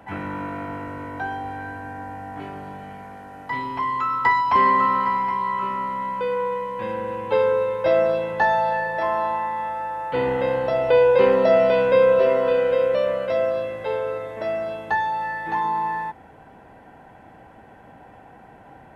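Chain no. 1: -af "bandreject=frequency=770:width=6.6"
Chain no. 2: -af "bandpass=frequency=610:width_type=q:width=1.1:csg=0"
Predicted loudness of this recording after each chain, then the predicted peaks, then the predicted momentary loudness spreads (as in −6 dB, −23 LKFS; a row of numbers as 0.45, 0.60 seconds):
−22.0, −23.0 LKFS; −6.5, −7.0 dBFS; 18, 20 LU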